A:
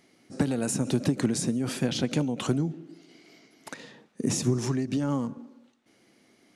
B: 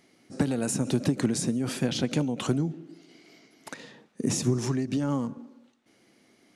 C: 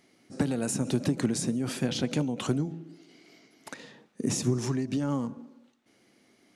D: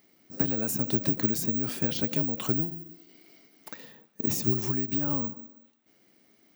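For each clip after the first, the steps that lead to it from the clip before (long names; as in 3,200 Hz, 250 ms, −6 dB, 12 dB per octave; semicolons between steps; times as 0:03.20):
no processing that can be heard
hum removal 163.9 Hz, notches 6; level −1.5 dB
bad sample-rate conversion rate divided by 2×, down none, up zero stuff; level −2.5 dB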